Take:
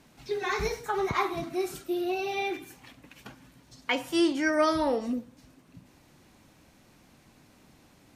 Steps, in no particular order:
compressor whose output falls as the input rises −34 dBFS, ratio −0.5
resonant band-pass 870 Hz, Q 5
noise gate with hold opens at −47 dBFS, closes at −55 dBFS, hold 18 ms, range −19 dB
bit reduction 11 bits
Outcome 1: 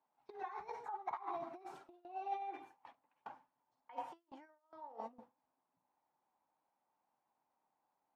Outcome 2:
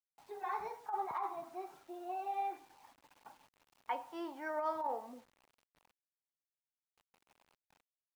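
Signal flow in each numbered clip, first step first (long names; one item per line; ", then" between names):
bit reduction, then compressor whose output falls as the input rises, then resonant band-pass, then noise gate with hold
noise gate with hold, then resonant band-pass, then bit reduction, then compressor whose output falls as the input rises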